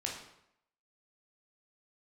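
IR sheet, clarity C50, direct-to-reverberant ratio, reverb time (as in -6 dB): 4.0 dB, -1.5 dB, 0.75 s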